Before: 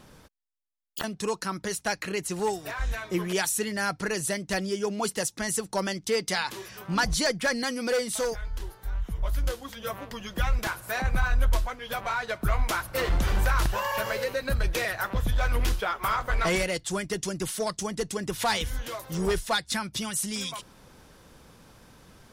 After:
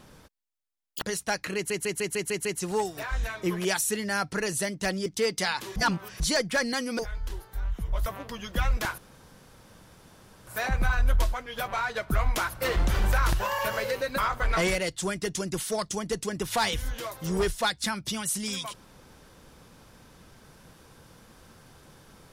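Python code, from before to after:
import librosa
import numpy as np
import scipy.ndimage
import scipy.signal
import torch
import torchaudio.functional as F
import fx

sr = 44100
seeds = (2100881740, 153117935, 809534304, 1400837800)

y = fx.edit(x, sr, fx.cut(start_s=1.02, length_s=0.58),
    fx.stutter(start_s=2.13, slice_s=0.15, count=7),
    fx.cut(start_s=4.74, length_s=1.22),
    fx.reverse_span(start_s=6.66, length_s=0.44),
    fx.cut(start_s=7.89, length_s=0.4),
    fx.cut(start_s=9.36, length_s=0.52),
    fx.insert_room_tone(at_s=10.8, length_s=1.49),
    fx.cut(start_s=14.51, length_s=1.55), tone=tone)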